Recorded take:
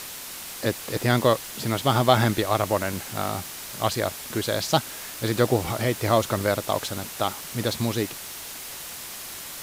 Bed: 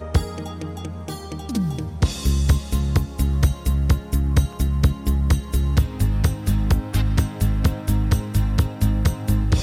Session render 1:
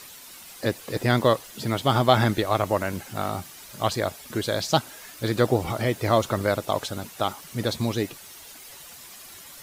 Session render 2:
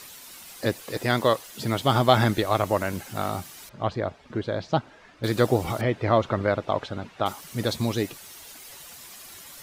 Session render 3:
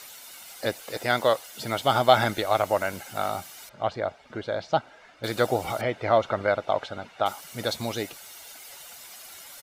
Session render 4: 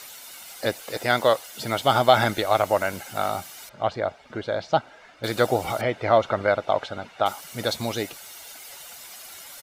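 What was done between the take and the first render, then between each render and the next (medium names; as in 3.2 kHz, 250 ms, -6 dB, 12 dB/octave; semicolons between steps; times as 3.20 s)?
noise reduction 10 dB, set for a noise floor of -38 dBFS
0.82–1.59 s: bass shelf 290 Hz -6 dB; 3.69–5.24 s: tape spacing loss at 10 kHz 32 dB; 5.81–7.26 s: low-pass 2.8 kHz
tone controls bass -11 dB, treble -1 dB; comb 1.4 ms, depth 34%
trim +2.5 dB; peak limiter -3 dBFS, peak gain reduction 2.5 dB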